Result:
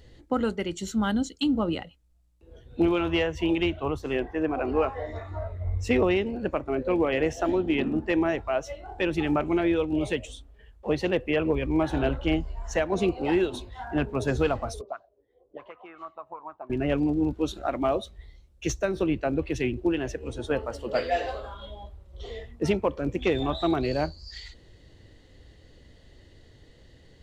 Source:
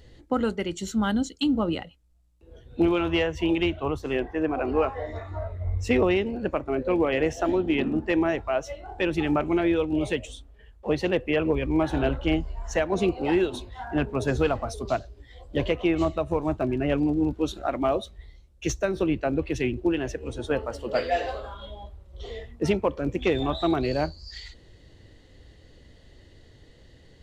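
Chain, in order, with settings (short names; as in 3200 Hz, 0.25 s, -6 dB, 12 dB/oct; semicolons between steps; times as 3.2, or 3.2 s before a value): 14.81–16.7 auto-wah 360–1300 Hz, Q 5.5, up, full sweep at -20 dBFS; gain -1 dB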